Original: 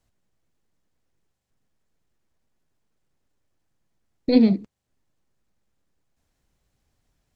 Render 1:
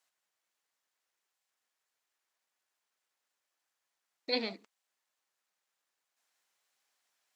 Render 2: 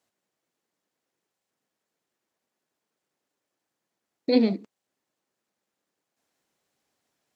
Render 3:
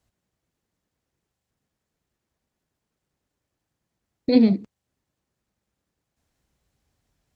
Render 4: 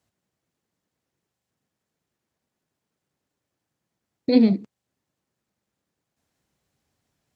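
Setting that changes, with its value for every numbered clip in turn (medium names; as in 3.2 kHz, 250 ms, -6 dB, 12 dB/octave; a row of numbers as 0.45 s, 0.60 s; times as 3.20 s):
high-pass, cutoff frequency: 990 Hz, 300 Hz, 41 Hz, 110 Hz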